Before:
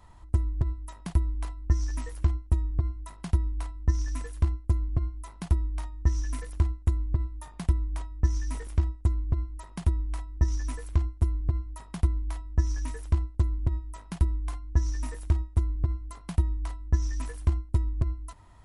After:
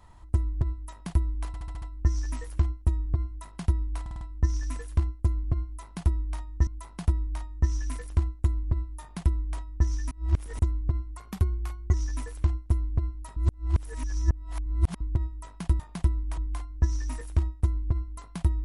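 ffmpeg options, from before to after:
-filter_complex "[0:a]asplit=19[s0][s1][s2][s3][s4][s5][s6][s7][s8][s9][s10][s11][s12][s13][s14][s15][s16][s17][s18];[s0]atrim=end=1.542[s19];[s1]atrim=start=1.468:end=1.542[s20];[s2]atrim=start=1.468:end=1.542[s21];[s3]atrim=start=1.468:end=1.542[s22];[s4]atrim=start=1.468:end=1.542[s23];[s5]atrim=start=1.468:end=3.712[s24];[s6]atrim=start=3.658:end=3.712[s25];[s7]atrim=start=3.658:end=3.712[s26];[s8]atrim=start=3.658:end=3.712[s27];[s9]atrim=start=3.658:end=6.122[s28];[s10]atrim=start=5.098:end=8.542[s29];[s11]atrim=start=8.538:end=9.022,asetpts=PTS-STARTPTS,areverse[s30];[s12]atrim=start=9.018:end=9.604[s31];[s13]atrim=start=9.6:end=10.45,asetpts=PTS-STARTPTS,asetrate=48951,aresample=44100,atrim=end_sample=33770,asetpts=PTS-STARTPTS[s32];[s14]atrim=start=10.446:end=11.882[s33];[s15]atrim=start=11.878:end=13.522,asetpts=PTS-STARTPTS,areverse[s34];[s16]atrim=start=13.518:end=14.312[s35];[s17]atrim=start=7.438:end=8.022[s36];[s18]atrim=start=14.308[s37];[s19][s20]acrossfade=d=0.004:c1=hsin:c2=hsin[s38];[s38][s21]acrossfade=d=0.004:c1=hsin:c2=hsin[s39];[s39][s22]acrossfade=d=0.004:c1=hsin:c2=hsin[s40];[s40][s23]acrossfade=d=0.004:c1=hsin:c2=hsin[s41];[s41][s24]acrossfade=d=0.004:c1=hsin:c2=hsin[s42];[s42][s25]acrossfade=d=0.004:c1=hsin:c2=hsin[s43];[s43][s26]acrossfade=d=0.004:c1=hsin:c2=hsin[s44];[s44][s27]acrossfade=d=0.004:c1=hsin:c2=hsin[s45];[s45][s28]acrossfade=d=0.004:c1=hsin:c2=hsin[s46];[s46][s29]acrossfade=d=0.004:c1=hsin:c2=hsin[s47];[s47][s30]acrossfade=d=0.004:c1=hsin:c2=hsin[s48];[s48][s31]acrossfade=d=0.004:c1=hsin:c2=hsin[s49];[s49][s32]acrossfade=d=0.004:c1=hsin:c2=hsin[s50];[s50][s33]acrossfade=d=0.004:c1=hsin:c2=hsin[s51];[s51][s34]acrossfade=d=0.004:c1=hsin:c2=hsin[s52];[s52][s35]acrossfade=d=0.004:c1=hsin:c2=hsin[s53];[s53][s36]acrossfade=d=0.004:c1=hsin:c2=hsin[s54];[s54][s37]acrossfade=d=0.004:c1=hsin:c2=hsin"

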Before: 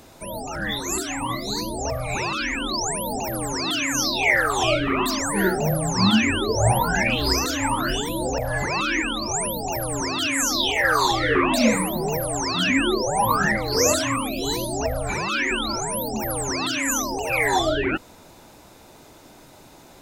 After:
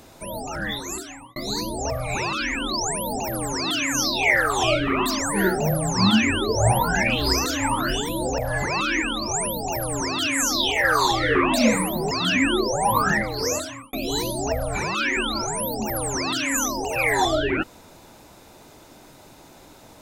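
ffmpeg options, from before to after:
-filter_complex "[0:a]asplit=4[s0][s1][s2][s3];[s0]atrim=end=1.36,asetpts=PTS-STARTPTS,afade=t=out:st=0.57:d=0.79[s4];[s1]atrim=start=1.36:end=12.112,asetpts=PTS-STARTPTS,afade=t=in:d=0.004:c=hsin[s5];[s2]atrim=start=12.448:end=14.27,asetpts=PTS-STARTPTS,afade=t=out:st=1.002:d=0.82[s6];[s3]atrim=start=14.27,asetpts=PTS-STARTPTS,afade=t=in:d=0.004:c=hsin[s7];[s4][s5]concat=n=2:v=0:a=1[s8];[s6][s7]concat=n=2:v=0:a=1[s9];[s8][s9]acrossfade=d=0.004:c1=hsin:c2=hsin"

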